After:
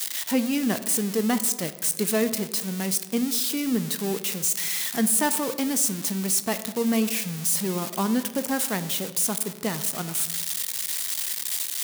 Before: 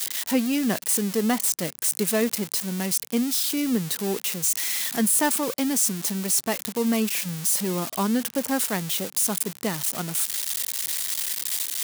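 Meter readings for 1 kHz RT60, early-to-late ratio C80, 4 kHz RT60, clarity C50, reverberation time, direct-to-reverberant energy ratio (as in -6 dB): 1.2 s, 15.0 dB, 0.80 s, 13.5 dB, 1.4 s, 11.0 dB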